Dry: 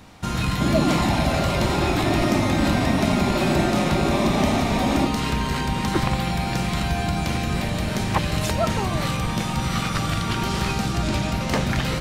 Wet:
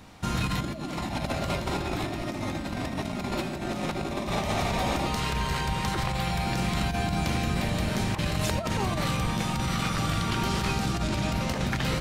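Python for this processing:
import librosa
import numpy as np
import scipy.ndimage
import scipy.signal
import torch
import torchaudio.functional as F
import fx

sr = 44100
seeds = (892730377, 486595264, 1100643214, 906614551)

y = fx.peak_eq(x, sr, hz=260.0, db=-10.5, octaves=0.65, at=(4.26, 6.44), fade=0.02)
y = fx.over_compress(y, sr, threshold_db=-23.0, ratio=-0.5)
y = y * librosa.db_to_amplitude(-4.5)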